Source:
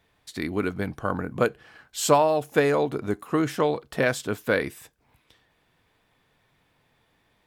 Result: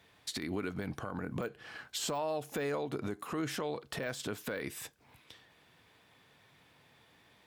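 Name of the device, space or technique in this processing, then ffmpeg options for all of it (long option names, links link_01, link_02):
broadcast voice chain: -af "highpass=80,deesser=0.75,acompressor=threshold=-31dB:ratio=4,equalizer=frequency=4300:width_type=o:width=2.3:gain=3.5,alimiter=level_in=4dB:limit=-24dB:level=0:latency=1:release=91,volume=-4dB,volume=2dB"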